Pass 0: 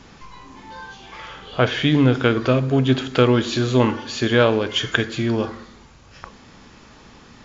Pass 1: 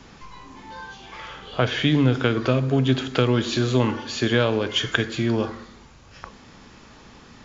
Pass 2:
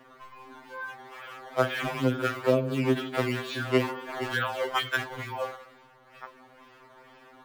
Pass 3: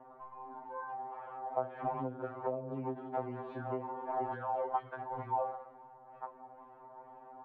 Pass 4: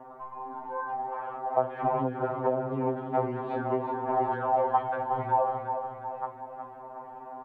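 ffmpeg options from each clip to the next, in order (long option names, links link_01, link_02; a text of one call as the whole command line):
ffmpeg -i in.wav -filter_complex "[0:a]acrossover=split=160|3000[link_01][link_02][link_03];[link_02]acompressor=threshold=-16dB:ratio=6[link_04];[link_01][link_04][link_03]amix=inputs=3:normalize=0,volume=-1dB" out.wav
ffmpeg -i in.wav -filter_complex "[0:a]acrusher=samples=10:mix=1:aa=0.000001:lfo=1:lforange=16:lforate=2.2,acrossover=split=340 3100:gain=0.158 1 0.2[link_01][link_02][link_03];[link_01][link_02][link_03]amix=inputs=3:normalize=0,afftfilt=real='re*2.45*eq(mod(b,6),0)':imag='im*2.45*eq(mod(b,6),0)':win_size=2048:overlap=0.75" out.wav
ffmpeg -i in.wav -af "acompressor=threshold=-31dB:ratio=12,lowpass=frequency=830:width_type=q:width=4.9,volume=-5.5dB" out.wav
ffmpeg -i in.wav -af "aecho=1:1:363|726|1089|1452|1815|2178:0.422|0.215|0.11|0.0559|0.0285|0.0145,volume=8.5dB" out.wav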